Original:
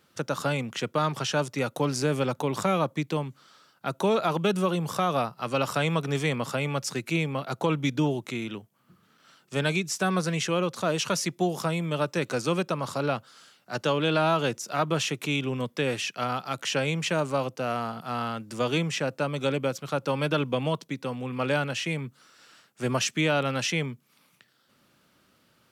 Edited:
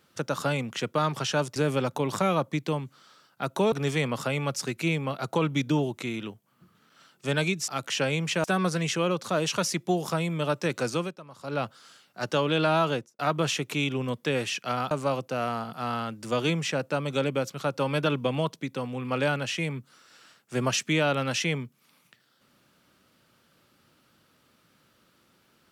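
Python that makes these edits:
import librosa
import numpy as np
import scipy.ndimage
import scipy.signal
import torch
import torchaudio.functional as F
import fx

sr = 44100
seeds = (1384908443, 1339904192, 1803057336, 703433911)

y = fx.studio_fade_out(x, sr, start_s=14.38, length_s=0.33)
y = fx.edit(y, sr, fx.cut(start_s=1.56, length_s=0.44),
    fx.cut(start_s=4.16, length_s=1.84),
    fx.fade_down_up(start_s=12.43, length_s=0.73, db=-16.5, fade_s=0.25),
    fx.move(start_s=16.43, length_s=0.76, to_s=9.96), tone=tone)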